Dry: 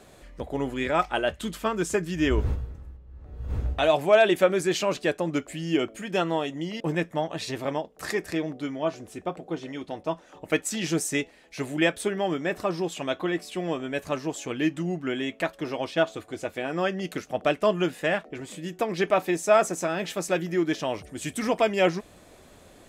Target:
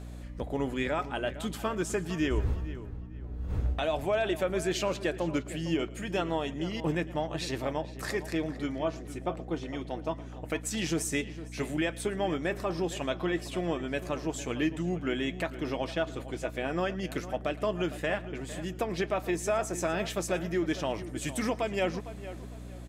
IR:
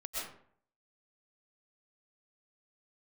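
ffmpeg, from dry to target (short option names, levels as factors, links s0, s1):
-filter_complex "[0:a]alimiter=limit=0.126:level=0:latency=1:release=233,aeval=exprs='val(0)+0.0112*(sin(2*PI*60*n/s)+sin(2*PI*2*60*n/s)/2+sin(2*PI*3*60*n/s)/3+sin(2*PI*4*60*n/s)/4+sin(2*PI*5*60*n/s)/5)':c=same,asplit=2[s0][s1];[s1]adelay=457,lowpass=f=2600:p=1,volume=0.211,asplit=2[s2][s3];[s3]adelay=457,lowpass=f=2600:p=1,volume=0.31,asplit=2[s4][s5];[s5]adelay=457,lowpass=f=2600:p=1,volume=0.31[s6];[s0][s2][s4][s6]amix=inputs=4:normalize=0,asplit=2[s7][s8];[1:a]atrim=start_sample=2205,atrim=end_sample=3528,adelay=113[s9];[s8][s9]afir=irnorm=-1:irlink=0,volume=0.158[s10];[s7][s10]amix=inputs=2:normalize=0,volume=0.794"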